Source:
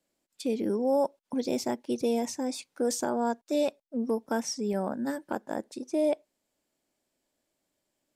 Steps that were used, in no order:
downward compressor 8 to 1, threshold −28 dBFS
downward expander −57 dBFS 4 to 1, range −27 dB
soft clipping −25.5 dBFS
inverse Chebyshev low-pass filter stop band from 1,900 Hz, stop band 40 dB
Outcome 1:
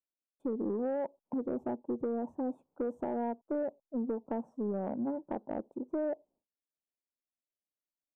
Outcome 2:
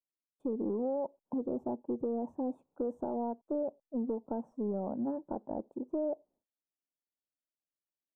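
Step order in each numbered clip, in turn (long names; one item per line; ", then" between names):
downward expander, then inverse Chebyshev low-pass filter, then downward compressor, then soft clipping
downward expander, then downward compressor, then soft clipping, then inverse Chebyshev low-pass filter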